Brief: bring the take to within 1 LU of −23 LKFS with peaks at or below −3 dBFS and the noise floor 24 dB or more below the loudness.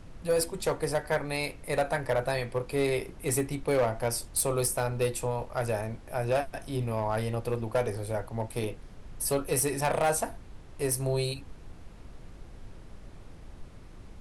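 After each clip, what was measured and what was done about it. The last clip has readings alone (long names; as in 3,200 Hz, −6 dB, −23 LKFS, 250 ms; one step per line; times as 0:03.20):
share of clipped samples 0.8%; peaks flattened at −20.0 dBFS; background noise floor −48 dBFS; target noise floor −54 dBFS; integrated loudness −30.0 LKFS; sample peak −20.0 dBFS; target loudness −23.0 LKFS
→ clipped peaks rebuilt −20 dBFS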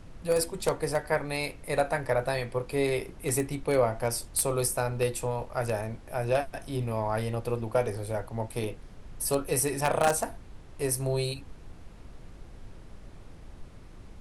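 share of clipped samples 0.0%; background noise floor −48 dBFS; target noise floor −54 dBFS
→ noise reduction from a noise print 6 dB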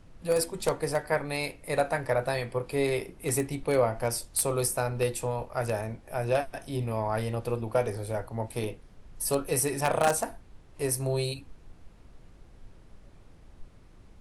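background noise floor −54 dBFS; integrated loudness −29.5 LKFS; sample peak −11.0 dBFS; target loudness −23.0 LKFS
→ level +6.5 dB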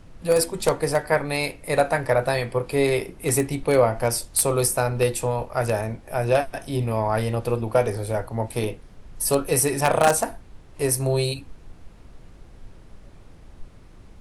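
integrated loudness −23.0 LKFS; sample peak −4.5 dBFS; background noise floor −47 dBFS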